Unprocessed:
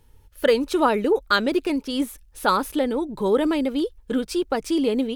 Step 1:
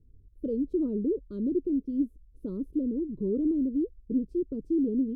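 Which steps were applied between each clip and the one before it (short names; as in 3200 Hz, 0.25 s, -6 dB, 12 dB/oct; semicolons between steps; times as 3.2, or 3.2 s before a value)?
inverse Chebyshev low-pass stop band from 720 Hz, stop band 40 dB; gain -2.5 dB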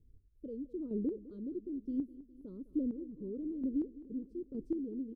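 chopper 1.1 Hz, depth 60%, duty 20%; feedback echo 0.206 s, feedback 59%, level -17.5 dB; gain -5 dB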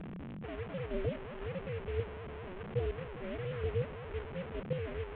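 delta modulation 16 kbps, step -38 dBFS; ring modulator 180 Hz; gain +3 dB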